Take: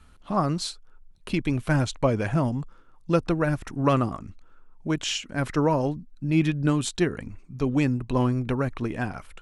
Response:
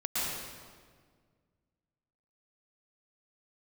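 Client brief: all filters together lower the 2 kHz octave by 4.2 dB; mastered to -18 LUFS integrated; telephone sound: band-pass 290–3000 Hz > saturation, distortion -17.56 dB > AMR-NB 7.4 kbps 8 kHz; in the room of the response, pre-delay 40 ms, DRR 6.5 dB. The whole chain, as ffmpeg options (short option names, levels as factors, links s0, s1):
-filter_complex "[0:a]equalizer=f=2000:t=o:g=-5,asplit=2[s0][s1];[1:a]atrim=start_sample=2205,adelay=40[s2];[s1][s2]afir=irnorm=-1:irlink=0,volume=0.2[s3];[s0][s3]amix=inputs=2:normalize=0,highpass=290,lowpass=3000,asoftclip=threshold=0.15,volume=4.47" -ar 8000 -c:a libopencore_amrnb -b:a 7400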